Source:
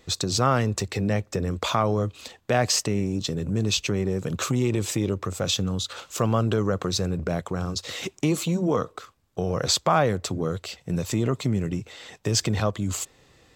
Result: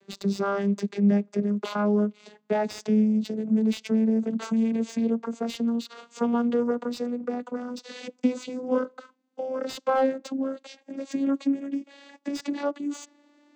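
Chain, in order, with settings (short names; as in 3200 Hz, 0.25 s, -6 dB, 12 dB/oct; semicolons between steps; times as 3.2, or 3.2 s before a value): vocoder on a gliding note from G3, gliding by +7 st; dynamic EQ 5300 Hz, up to +4 dB, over -49 dBFS, Q 1.6; slew limiter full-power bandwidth 110 Hz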